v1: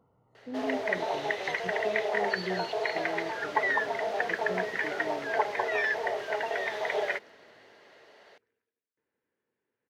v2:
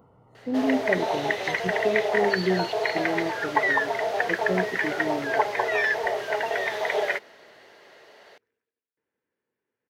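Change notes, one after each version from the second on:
speech +11.0 dB; first sound +4.5 dB; master: add treble shelf 11 kHz +10 dB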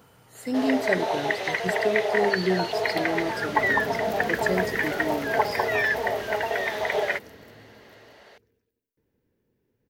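speech: remove Savitzky-Golay filter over 65 samples; second sound: remove band-pass filter 1.5 kHz, Q 0.96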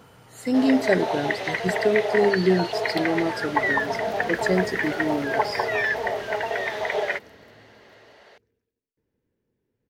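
speech +5.0 dB; second sound -3.5 dB; master: add treble shelf 11 kHz -10 dB

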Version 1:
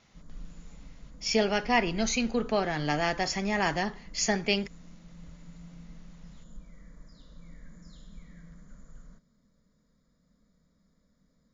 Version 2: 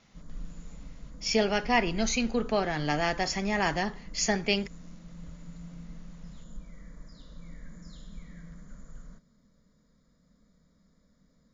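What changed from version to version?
background +3.5 dB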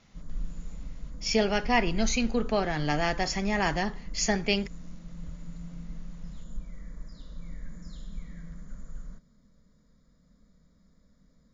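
master: add bass shelf 100 Hz +7 dB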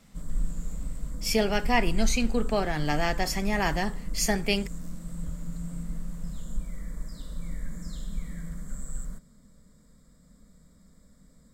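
background +5.5 dB; master: remove brick-wall FIR low-pass 7.2 kHz

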